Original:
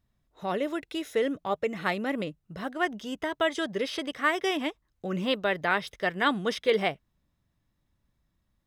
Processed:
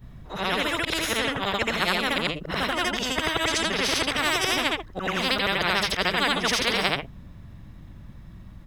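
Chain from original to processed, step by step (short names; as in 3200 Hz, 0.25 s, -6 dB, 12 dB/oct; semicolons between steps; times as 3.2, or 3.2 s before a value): short-time reversal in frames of 0.176 s; tone controls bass +8 dB, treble -10 dB; spectral compressor 4:1; gain +8.5 dB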